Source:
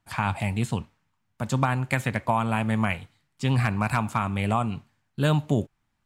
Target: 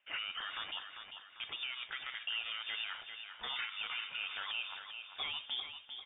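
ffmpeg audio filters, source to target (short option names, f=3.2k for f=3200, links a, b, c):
-af "highpass=570,acompressor=threshold=-34dB:ratio=3,alimiter=level_in=6.5dB:limit=-24dB:level=0:latency=1:release=60,volume=-6.5dB,flanger=delay=0.9:depth=3:regen=69:speed=0.43:shape=sinusoidal,asoftclip=type=tanh:threshold=-38dB,aecho=1:1:396|792|1188|1584|1980:0.398|0.171|0.0736|0.0317|0.0136,lowpass=f=3.2k:t=q:w=0.5098,lowpass=f=3.2k:t=q:w=0.6013,lowpass=f=3.2k:t=q:w=0.9,lowpass=f=3.2k:t=q:w=2.563,afreqshift=-3800,volume=8dB"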